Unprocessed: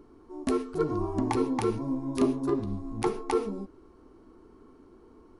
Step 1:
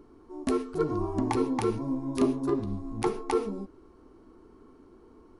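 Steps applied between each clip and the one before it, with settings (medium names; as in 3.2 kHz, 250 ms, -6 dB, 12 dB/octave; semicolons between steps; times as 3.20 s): no audible change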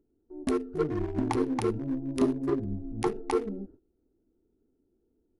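local Wiener filter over 41 samples; gate -49 dBFS, range -17 dB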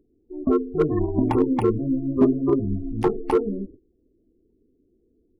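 spectral gate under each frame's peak -25 dB strong; slew-rate limiter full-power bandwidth 46 Hz; trim +8 dB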